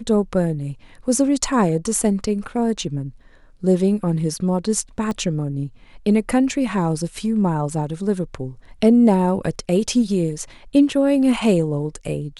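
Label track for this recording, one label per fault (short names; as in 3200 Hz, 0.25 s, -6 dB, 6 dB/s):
5.110000	5.110000	pop -15 dBFS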